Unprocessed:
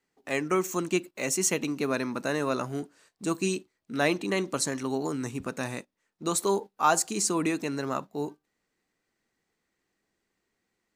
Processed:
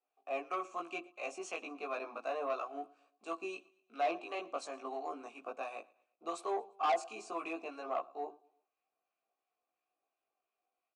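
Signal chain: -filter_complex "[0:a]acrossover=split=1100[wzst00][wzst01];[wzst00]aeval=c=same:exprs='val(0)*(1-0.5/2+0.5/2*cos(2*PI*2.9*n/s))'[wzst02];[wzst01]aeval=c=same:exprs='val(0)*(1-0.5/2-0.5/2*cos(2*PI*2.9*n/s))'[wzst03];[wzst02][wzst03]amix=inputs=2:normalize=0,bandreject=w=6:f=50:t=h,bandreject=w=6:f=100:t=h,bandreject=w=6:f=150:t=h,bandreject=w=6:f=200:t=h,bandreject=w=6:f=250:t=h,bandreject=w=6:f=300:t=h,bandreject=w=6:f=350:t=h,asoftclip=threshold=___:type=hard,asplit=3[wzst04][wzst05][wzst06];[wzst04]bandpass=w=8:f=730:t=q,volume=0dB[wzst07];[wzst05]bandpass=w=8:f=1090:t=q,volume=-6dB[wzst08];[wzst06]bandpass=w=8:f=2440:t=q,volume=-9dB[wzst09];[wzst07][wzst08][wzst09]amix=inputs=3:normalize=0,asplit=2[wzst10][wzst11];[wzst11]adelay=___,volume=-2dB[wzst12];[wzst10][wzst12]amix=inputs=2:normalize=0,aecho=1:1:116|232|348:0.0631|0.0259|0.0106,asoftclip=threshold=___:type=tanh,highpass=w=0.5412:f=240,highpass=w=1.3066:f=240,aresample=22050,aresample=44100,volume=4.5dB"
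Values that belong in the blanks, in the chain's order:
-18.5dB, 18, -30.5dB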